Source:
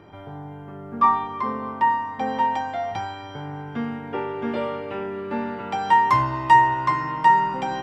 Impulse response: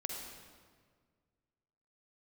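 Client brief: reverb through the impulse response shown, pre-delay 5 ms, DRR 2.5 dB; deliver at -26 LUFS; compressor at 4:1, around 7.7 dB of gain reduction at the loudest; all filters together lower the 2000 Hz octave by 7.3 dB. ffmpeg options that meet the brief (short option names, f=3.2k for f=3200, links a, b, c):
-filter_complex "[0:a]equalizer=f=2k:t=o:g=-8,acompressor=threshold=-20dB:ratio=4,asplit=2[a][b];[1:a]atrim=start_sample=2205,adelay=5[c];[b][c]afir=irnorm=-1:irlink=0,volume=-3dB[d];[a][d]amix=inputs=2:normalize=0"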